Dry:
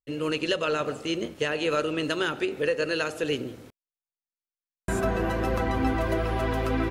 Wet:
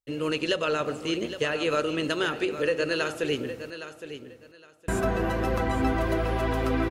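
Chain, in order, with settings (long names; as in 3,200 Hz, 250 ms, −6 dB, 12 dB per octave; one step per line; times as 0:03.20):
repeating echo 814 ms, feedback 21%, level −11.5 dB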